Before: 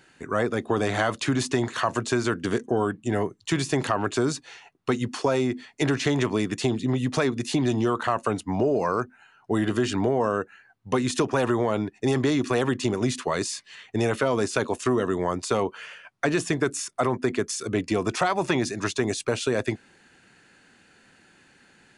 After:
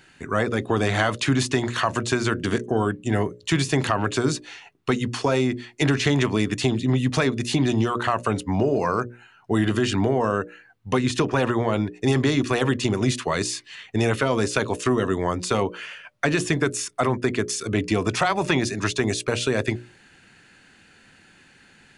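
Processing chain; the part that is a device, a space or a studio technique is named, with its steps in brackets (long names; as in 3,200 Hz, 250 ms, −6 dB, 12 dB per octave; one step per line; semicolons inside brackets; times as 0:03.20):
low-shelf EQ 180 Hz +9 dB
presence and air boost (parametric band 2,700 Hz +5 dB 1.9 octaves; high-shelf EQ 9,800 Hz +4 dB)
mains-hum notches 60/120/180/240/300/360/420/480/540/600 Hz
0:10.98–0:11.73: high-shelf EQ 7,400 Hz −9 dB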